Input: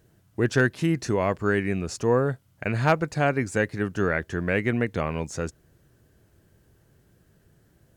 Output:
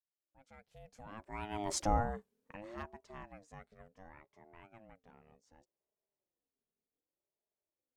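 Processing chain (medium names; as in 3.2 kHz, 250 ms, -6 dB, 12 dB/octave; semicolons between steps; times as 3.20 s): fade-in on the opening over 1.90 s; Doppler pass-by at 1.78 s, 32 m/s, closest 2 m; ring modulator with a swept carrier 420 Hz, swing 25%, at 0.67 Hz; trim +2 dB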